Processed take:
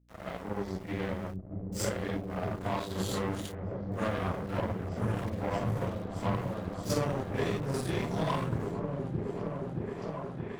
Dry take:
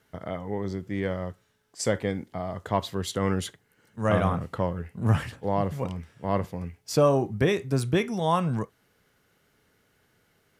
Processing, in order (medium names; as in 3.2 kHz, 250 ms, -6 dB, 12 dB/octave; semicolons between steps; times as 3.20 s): phase randomisation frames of 200 ms; compression 5:1, threshold -29 dBFS, peak gain reduction 11.5 dB; small samples zeroed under -38 dBFS; hum 60 Hz, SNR 14 dB; Chebyshev shaper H 7 -18 dB, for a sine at -19 dBFS; on a send: delay with an opening low-pass 624 ms, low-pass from 200 Hz, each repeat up 1 oct, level 0 dB